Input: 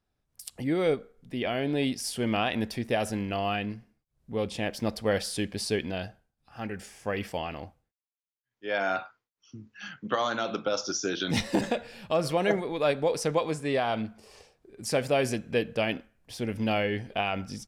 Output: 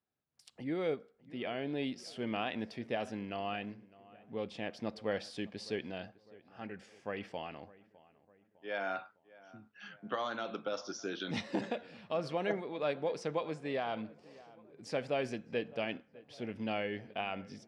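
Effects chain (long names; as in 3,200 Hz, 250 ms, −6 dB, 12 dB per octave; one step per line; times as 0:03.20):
band-pass filter 140–4,400 Hz
feedback echo with a low-pass in the loop 606 ms, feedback 51%, low-pass 2,100 Hz, level −20.5 dB
level −8.5 dB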